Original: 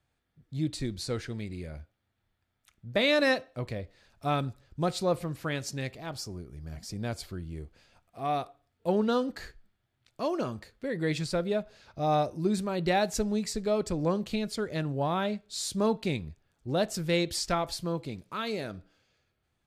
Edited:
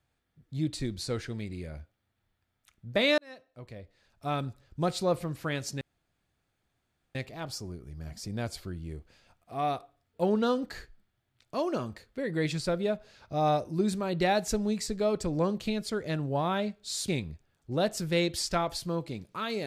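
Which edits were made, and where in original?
3.18–4.79 fade in linear
5.81 insert room tone 1.34 s
15.74–16.05 cut

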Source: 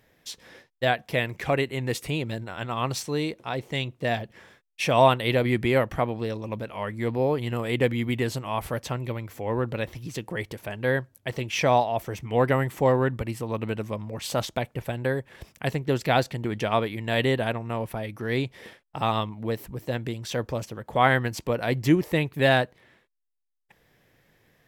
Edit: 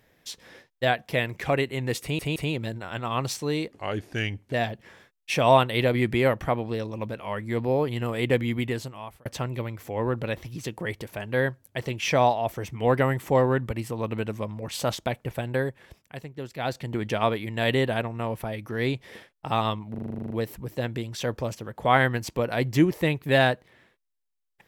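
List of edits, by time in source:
2.02 stutter 0.17 s, 3 plays
3.37–4.03 speed 81%
8.04–8.76 fade out
15.16–16.45 dip -11.5 dB, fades 0.37 s
19.41 stutter 0.04 s, 11 plays

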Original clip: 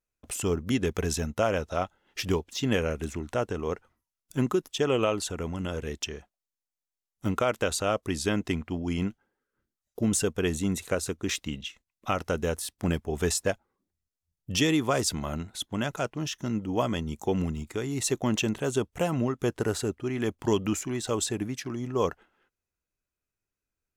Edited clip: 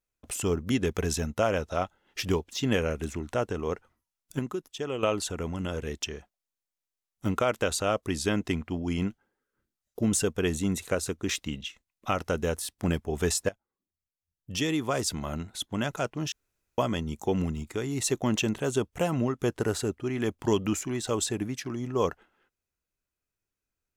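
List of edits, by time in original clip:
4.39–5.03 gain -7.5 dB
13.49–15.56 fade in, from -18 dB
16.32–16.78 room tone

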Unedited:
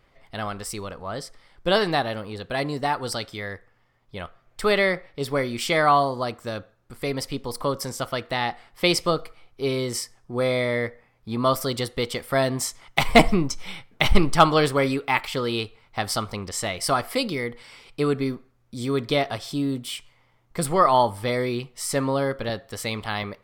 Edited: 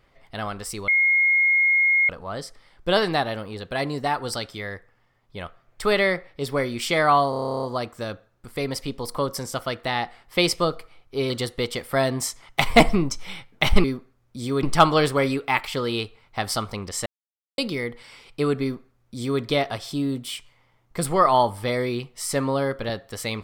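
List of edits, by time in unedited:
0.88 add tone 2150 Hz -15.5 dBFS 1.21 s
6.09 stutter 0.03 s, 12 plays
9.76–11.69 cut
16.66–17.18 mute
18.22–19.01 copy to 14.23

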